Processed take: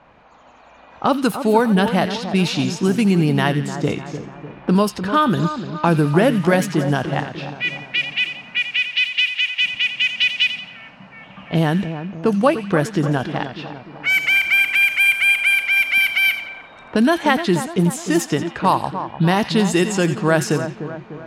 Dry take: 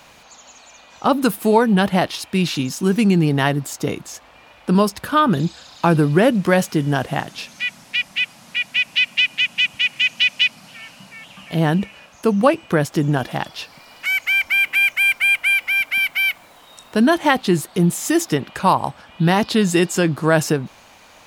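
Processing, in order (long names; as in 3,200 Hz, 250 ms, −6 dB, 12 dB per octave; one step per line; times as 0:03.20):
camcorder AGC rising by 5.5 dB per second
0:08.59–0:09.63: high-pass filter 1,000 Hz 12 dB per octave
on a send: echo with a time of its own for lows and highs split 1,600 Hz, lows 299 ms, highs 87 ms, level −10 dB
on the sum: low-pass that shuts in the quiet parts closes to 1,400 Hz, open at −11.5 dBFS
level −1 dB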